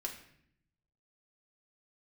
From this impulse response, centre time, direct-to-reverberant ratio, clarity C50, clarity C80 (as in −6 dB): 21 ms, 0.0 dB, 8.5 dB, 11.0 dB